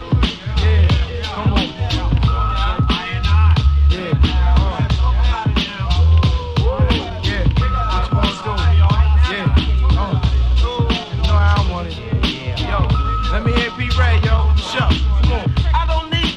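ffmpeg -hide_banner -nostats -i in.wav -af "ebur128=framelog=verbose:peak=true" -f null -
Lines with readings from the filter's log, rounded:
Integrated loudness:
  I:         -16.7 LUFS
  Threshold: -26.7 LUFS
Loudness range:
  LRA:         1.6 LU
  Threshold: -36.7 LUFS
  LRA low:   -17.6 LUFS
  LRA high:  -16.0 LUFS
True peak:
  Peak:       -2.0 dBFS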